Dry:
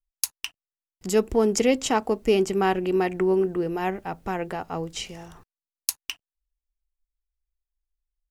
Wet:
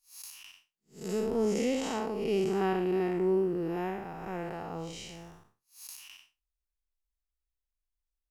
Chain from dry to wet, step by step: spectral blur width 190 ms; trim -4 dB

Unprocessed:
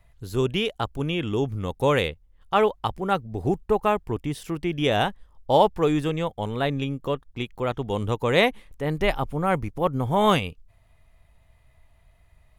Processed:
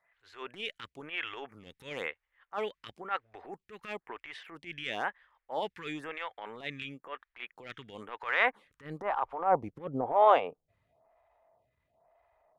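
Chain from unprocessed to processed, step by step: band-pass sweep 1.9 kHz -> 700 Hz, 8.10–9.78 s; transient shaper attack -11 dB, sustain +4 dB; lamp-driven phase shifter 1 Hz; trim +6.5 dB

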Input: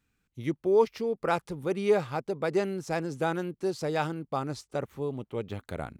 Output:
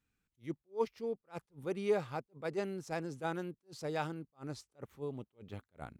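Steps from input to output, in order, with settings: attacks held to a fixed rise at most 330 dB/s; trim -7.5 dB

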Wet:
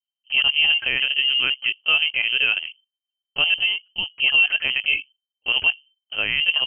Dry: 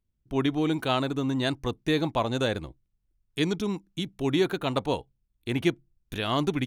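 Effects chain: gate with hold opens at -56 dBFS; LPC vocoder at 8 kHz pitch kept; peaking EQ 410 Hz +8.5 dB 1.3 oct; peak limiter -12 dBFS, peak gain reduction 6.5 dB; frequency inversion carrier 3.1 kHz; trim +2.5 dB

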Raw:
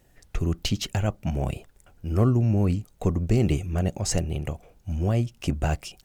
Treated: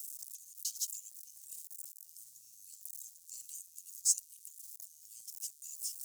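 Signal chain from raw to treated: jump at every zero crossing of -34.5 dBFS; inverse Chebyshev high-pass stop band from 1.6 kHz, stop band 70 dB; trim +2.5 dB

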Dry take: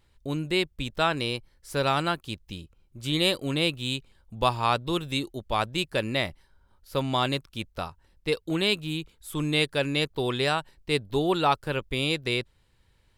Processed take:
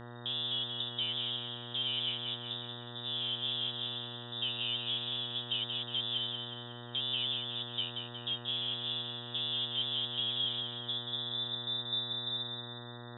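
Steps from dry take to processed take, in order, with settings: compression 2:1, threshold -28 dBFS, peak gain reduction 6.5 dB; valve stage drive 35 dB, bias 0.75; low-pass sweep 690 Hz -> 130 Hz, 10.16–11.59 s; frequency inversion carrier 3.7 kHz; thinning echo 182 ms, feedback 53%, level -5.5 dB; mains buzz 120 Hz, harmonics 16, -47 dBFS -4 dB/octave

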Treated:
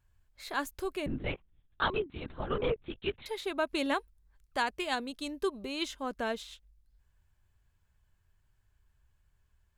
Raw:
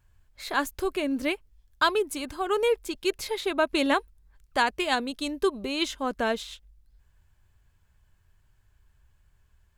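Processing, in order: 1.06–3.26 s: LPC vocoder at 8 kHz whisper; trim -7 dB

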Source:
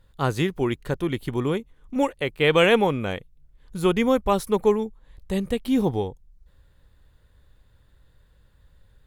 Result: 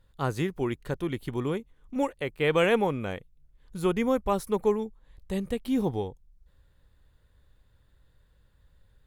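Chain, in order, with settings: dynamic bell 3.4 kHz, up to -5 dB, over -40 dBFS, Q 1.5; trim -5 dB

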